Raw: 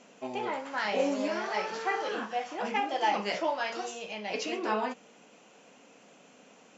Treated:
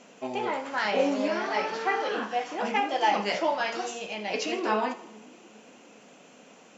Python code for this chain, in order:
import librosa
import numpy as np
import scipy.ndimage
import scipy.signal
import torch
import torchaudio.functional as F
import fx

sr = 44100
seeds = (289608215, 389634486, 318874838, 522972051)

p1 = fx.lowpass(x, sr, hz=5900.0, slope=12, at=(0.91, 2.23))
p2 = p1 + fx.echo_split(p1, sr, split_hz=340.0, low_ms=406, high_ms=81, feedback_pct=52, wet_db=-16.0, dry=0)
y = p2 * librosa.db_to_amplitude(3.5)